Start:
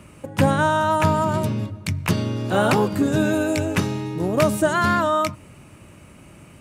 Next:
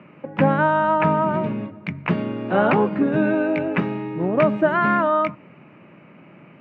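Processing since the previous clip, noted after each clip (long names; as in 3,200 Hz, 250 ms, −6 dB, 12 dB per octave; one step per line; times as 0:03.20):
elliptic band-pass filter 160–2,400 Hz, stop band 70 dB
level +1.5 dB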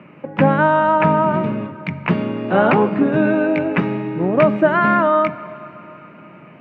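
dense smooth reverb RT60 3.7 s, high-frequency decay 0.9×, DRR 15 dB
level +3.5 dB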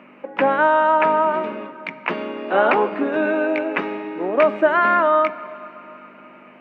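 mains hum 50 Hz, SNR 12 dB
Bessel high-pass filter 410 Hz, order 6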